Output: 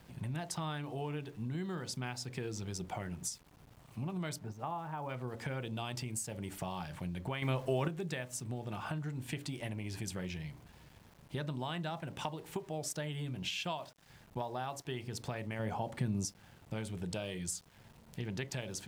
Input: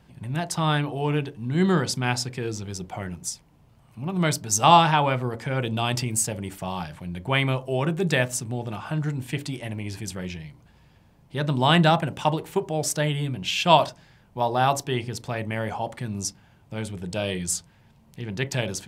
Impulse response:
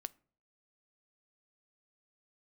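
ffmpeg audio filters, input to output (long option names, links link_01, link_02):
-filter_complex "[0:a]acompressor=threshold=-34dB:ratio=16,asplit=3[link_01][link_02][link_03];[link_01]afade=type=out:start_time=4.38:duration=0.02[link_04];[link_02]lowpass=1300,afade=type=in:start_time=4.38:duration=0.02,afade=type=out:start_time=5.08:duration=0.02[link_05];[link_03]afade=type=in:start_time=5.08:duration=0.02[link_06];[link_04][link_05][link_06]amix=inputs=3:normalize=0,asettb=1/sr,asplit=3[link_07][link_08][link_09];[link_07]atrim=end=15.594[link_10];[link_08]atrim=start=15.59:end=16.26,asetpts=PTS-STARTPTS,afade=type=in:duration=0.004:curve=qsin,afade=type=out:start_time=0.666:duration=0.004:curve=qsin,equalizer=frequency=160:width=0.36:gain=6.5[link_11];[link_09]atrim=start=16.256[link_12];[link_10][link_11]acrossfade=duration=0.004:curve1=hsin:curve2=qsin[link_13];[link_13][link_12]acrossfade=duration=0.004:curve1=qsin:curve2=hsin,aeval=exprs='val(0)*gte(abs(val(0)),0.0015)':channel_layout=same,asettb=1/sr,asplit=3[link_14][link_15][link_16];[link_14]atrim=end=7.424[link_17];[link_15]atrim=start=7.42:end=7.88,asetpts=PTS-STARTPTS,afade=type=in:duration=0.004:curve=qsin,afade=type=out:start_time=0.456:duration=0.004:curve=qsin,acontrast=75[link_18];[link_16]atrim=start=7.876[link_19];[link_17][link_18]acrossfade=duration=0.004:curve1=hsin:curve2=qsin[link_20];[link_20][link_19]acrossfade=duration=0.004:curve1=qsin:curve2=hsin,volume=-1.5dB"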